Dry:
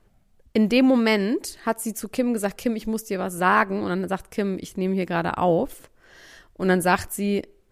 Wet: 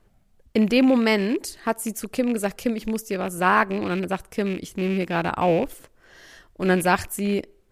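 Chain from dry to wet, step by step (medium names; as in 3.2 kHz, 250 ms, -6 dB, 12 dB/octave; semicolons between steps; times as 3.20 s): rattle on loud lows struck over -32 dBFS, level -25 dBFS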